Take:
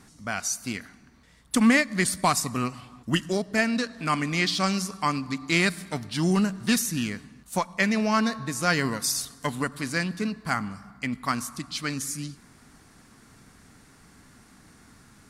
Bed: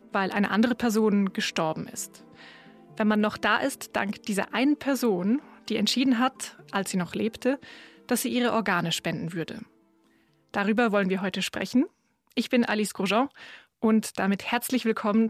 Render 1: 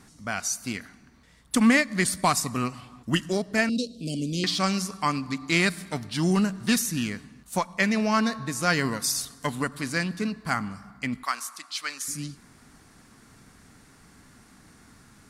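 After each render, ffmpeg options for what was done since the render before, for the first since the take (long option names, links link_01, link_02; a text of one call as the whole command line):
ffmpeg -i in.wav -filter_complex "[0:a]asettb=1/sr,asplit=3[link_01][link_02][link_03];[link_01]atrim=end=3.694[link_04];[link_02]atrim=start=3.69:end=4.44,asetpts=PTS-STARTPTS,afade=type=in:duration=0.004:curve=qsin,afade=type=out:start_time=0.746:duration=0.004:curve=qsin,asuperstop=centerf=1300:order=12:qfactor=0.55[link_05];[link_03]atrim=start=4.436[link_06];[link_04][link_05]acrossfade=duration=0.004:curve1=hsin:curve2=qsin[link_07];[link_07][link_06]acrossfade=duration=0.004:curve1=qsin:curve2=hsin,asettb=1/sr,asplit=3[link_08][link_09][link_10];[link_08]atrim=end=11.234[link_11];[link_09]atrim=start=11.23:end=12.08,asetpts=PTS-STARTPTS,afade=type=in:duration=0.004:curve=qsin,afade=type=out:start_time=0.846:duration=0.004:curve=qsin,highpass=800[link_12];[link_10]atrim=start=12.076[link_13];[link_11][link_12]acrossfade=duration=0.004:curve1=hsin:curve2=qsin[link_14];[link_14][link_13]acrossfade=duration=0.004:curve1=qsin:curve2=hsin" out.wav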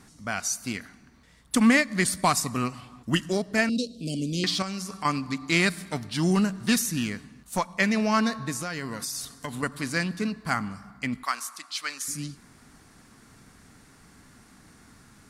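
ffmpeg -i in.wav -filter_complex "[0:a]asettb=1/sr,asplit=3[link_01][link_02][link_03];[link_01]atrim=end=4.624[link_04];[link_02]atrim=start=4.62:end=5.05,asetpts=PTS-STARTPTS,afade=type=in:duration=0.004:curve=qsin,afade=type=out:start_time=0.426:duration=0.004:curve=qsin,acompressor=threshold=-30dB:ratio=5:attack=3.2:release=140:knee=1:detection=peak[link_05];[link_03]atrim=start=5.046[link_06];[link_04][link_05]acrossfade=duration=0.004:curve1=hsin:curve2=qsin[link_07];[link_07][link_06]acrossfade=duration=0.004:curve1=qsin:curve2=hsin,asettb=1/sr,asplit=3[link_08][link_09][link_10];[link_08]atrim=end=7.024[link_11];[link_09]atrim=start=7.02:end=7.59,asetpts=PTS-STARTPTS,afade=type=in:duration=0.004:curve=qsin,afade=type=out:start_time=0.566:duration=0.004:curve=qsin,aeval=exprs='clip(val(0),-1,0.0631)':channel_layout=same[link_12];[link_10]atrim=start=7.586[link_13];[link_11][link_12]acrossfade=duration=0.004:curve1=hsin:curve2=qsin[link_14];[link_14][link_13]acrossfade=duration=0.004:curve1=qsin:curve2=hsin,asettb=1/sr,asplit=3[link_15][link_16][link_17];[link_15]atrim=end=8.564[link_18];[link_16]atrim=start=8.56:end=9.63,asetpts=PTS-STARTPTS,afade=type=in:duration=0.004:curve=qsin,afade=type=out:start_time=1.066:duration=0.004:curve=qsin,acompressor=threshold=-29dB:ratio=6:attack=3.2:release=140:knee=1:detection=peak[link_19];[link_17]atrim=start=9.626[link_20];[link_18][link_19]acrossfade=duration=0.004:curve1=hsin:curve2=qsin[link_21];[link_21][link_20]acrossfade=duration=0.004:curve1=qsin:curve2=hsin" out.wav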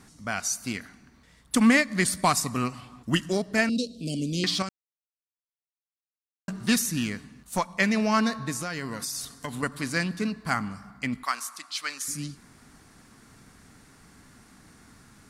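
ffmpeg -i in.wav -filter_complex "[0:a]asplit=3[link_01][link_02][link_03];[link_01]atrim=end=4.69,asetpts=PTS-STARTPTS,afade=type=out:start_time=4.686:duration=0.004:curve=hsin[link_04];[link_02]atrim=start=4.69:end=6.48,asetpts=PTS-STARTPTS,volume=0[link_05];[link_03]atrim=start=6.48,asetpts=PTS-STARTPTS,afade=type=in:duration=0.004:curve=hsin[link_06];[link_04][link_05][link_06]concat=n=3:v=0:a=1" out.wav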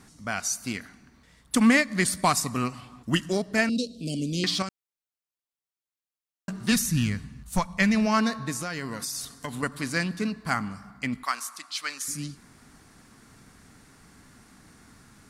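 ffmpeg -i in.wav -filter_complex "[0:a]asplit=3[link_01][link_02][link_03];[link_01]afade=type=out:start_time=6.71:duration=0.02[link_04];[link_02]asubboost=boost=6.5:cutoff=130,afade=type=in:start_time=6.71:duration=0.02,afade=type=out:start_time=8.05:duration=0.02[link_05];[link_03]afade=type=in:start_time=8.05:duration=0.02[link_06];[link_04][link_05][link_06]amix=inputs=3:normalize=0" out.wav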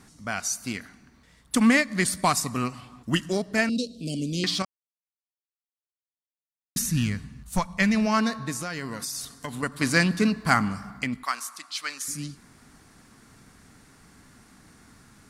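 ffmpeg -i in.wav -filter_complex "[0:a]asettb=1/sr,asplit=3[link_01][link_02][link_03];[link_01]atrim=end=9.814[link_04];[link_02]atrim=start=9.81:end=11.04,asetpts=PTS-STARTPTS,afade=type=in:duration=0.004:curve=qsin,afade=type=out:start_time=1.226:duration=0.004:curve=qsin,acontrast=67[link_05];[link_03]atrim=start=11.036[link_06];[link_04][link_05]acrossfade=duration=0.004:curve1=hsin:curve2=qsin[link_07];[link_07][link_06]acrossfade=duration=0.004:curve1=qsin:curve2=hsin,asplit=3[link_08][link_09][link_10];[link_08]atrim=end=4.65,asetpts=PTS-STARTPTS,afade=type=out:start_time=4.646:duration=0.004:curve=hsin[link_11];[link_09]atrim=start=4.65:end=6.76,asetpts=PTS-STARTPTS,volume=0[link_12];[link_10]atrim=start=6.76,asetpts=PTS-STARTPTS,afade=type=in:duration=0.004:curve=hsin[link_13];[link_11][link_12][link_13]concat=n=3:v=0:a=1" out.wav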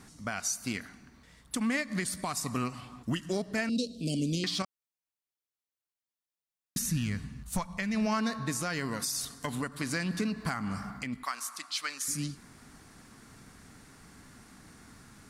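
ffmpeg -i in.wav -af "acompressor=threshold=-24dB:ratio=6,alimiter=limit=-21dB:level=0:latency=1:release=272" out.wav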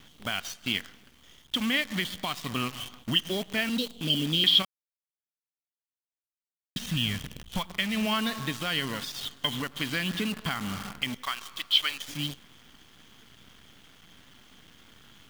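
ffmpeg -i in.wav -af "lowpass=frequency=3200:width_type=q:width=14,acrusher=bits=7:dc=4:mix=0:aa=0.000001" out.wav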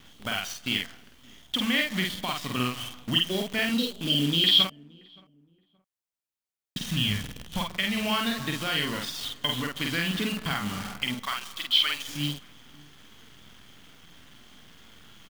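ffmpeg -i in.wav -filter_complex "[0:a]asplit=2[link_01][link_02];[link_02]adelay=48,volume=-2.5dB[link_03];[link_01][link_03]amix=inputs=2:normalize=0,asplit=2[link_04][link_05];[link_05]adelay=573,lowpass=frequency=1000:poles=1,volume=-23.5dB,asplit=2[link_06][link_07];[link_07]adelay=573,lowpass=frequency=1000:poles=1,volume=0.32[link_08];[link_04][link_06][link_08]amix=inputs=3:normalize=0" out.wav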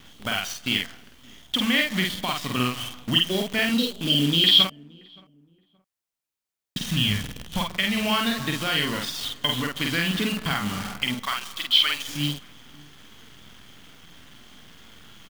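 ffmpeg -i in.wav -af "volume=3.5dB" out.wav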